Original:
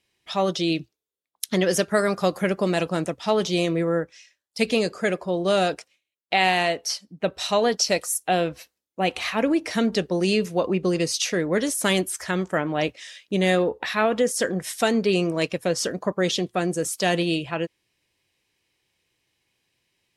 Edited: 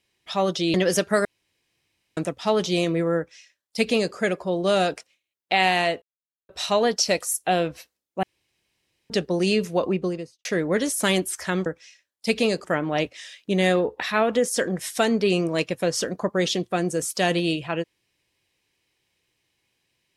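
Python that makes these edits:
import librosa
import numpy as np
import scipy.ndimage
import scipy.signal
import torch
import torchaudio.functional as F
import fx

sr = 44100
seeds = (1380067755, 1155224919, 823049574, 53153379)

y = fx.studio_fade_out(x, sr, start_s=10.65, length_s=0.61)
y = fx.edit(y, sr, fx.cut(start_s=0.74, length_s=0.81),
    fx.room_tone_fill(start_s=2.06, length_s=0.92),
    fx.duplicate(start_s=3.98, length_s=0.98, to_s=12.47),
    fx.silence(start_s=6.83, length_s=0.47),
    fx.room_tone_fill(start_s=9.04, length_s=0.87), tone=tone)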